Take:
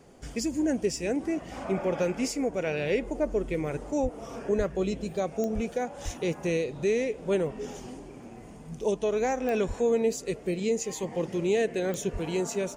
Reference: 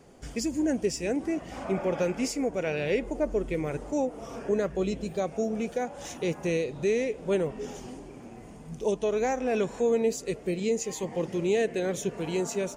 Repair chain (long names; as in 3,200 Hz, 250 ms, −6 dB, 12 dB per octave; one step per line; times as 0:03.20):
click removal
high-pass at the plosives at 0:04.02/0:04.57/0:05.54/0:06.04/0:09.67/0:12.12